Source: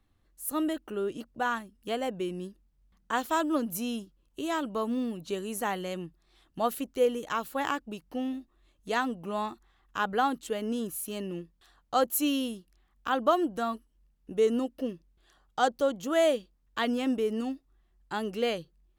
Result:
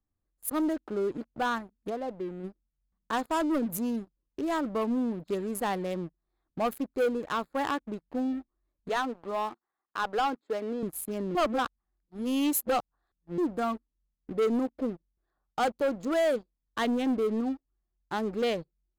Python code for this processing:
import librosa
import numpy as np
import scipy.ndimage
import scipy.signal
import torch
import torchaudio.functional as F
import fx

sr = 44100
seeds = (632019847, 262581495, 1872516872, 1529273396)

y = fx.ladder_lowpass(x, sr, hz=2100.0, resonance_pct=25, at=(1.89, 2.43), fade=0.02)
y = fx.bandpass_edges(y, sr, low_hz=340.0, high_hz=5100.0, at=(8.89, 10.83))
y = fx.edit(y, sr, fx.reverse_span(start_s=11.35, length_s=2.03), tone=tone)
y = fx.wiener(y, sr, points=15)
y = fx.leveller(y, sr, passes=3)
y = fx.notch(y, sr, hz=5700.0, q=17.0)
y = y * 10.0 ** (-8.0 / 20.0)